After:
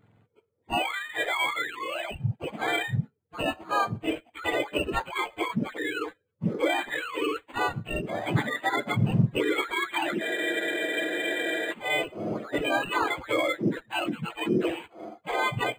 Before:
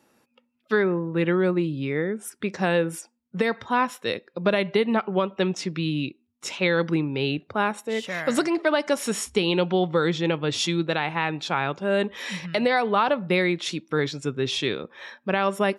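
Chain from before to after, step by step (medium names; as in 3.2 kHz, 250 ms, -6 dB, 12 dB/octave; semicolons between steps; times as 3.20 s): spectrum inverted on a logarithmic axis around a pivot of 1.1 kHz; spectral freeze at 10.25 s, 1.46 s; decimation joined by straight lines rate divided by 8×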